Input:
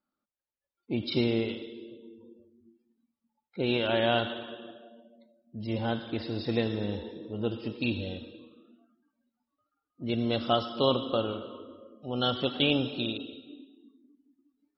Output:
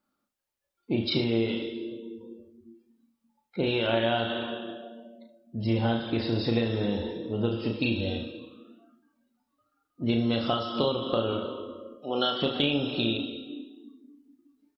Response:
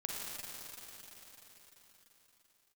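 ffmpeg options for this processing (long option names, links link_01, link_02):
-filter_complex "[0:a]asettb=1/sr,asplit=3[link_01][link_02][link_03];[link_01]atrim=end=11.944[link_04];[link_02]atrim=start=11.94:end=12.42,asetpts=PTS-STARTPTS,afade=type=in:duration=0.004:curve=qsin,afade=type=out:start_time=0.476:duration=0.004:curve=qsin,highpass=310[link_05];[link_03]atrim=start=12.416[link_06];[link_04][link_05]acrossfade=duration=0.004:curve1=hsin:curve2=qsin[link_07];[link_07][link_06]acrossfade=duration=0.004:curve1=qsin:curve2=hsin,acompressor=threshold=-29dB:ratio=12,aecho=1:1:35|73:0.531|0.224,volume=6dB"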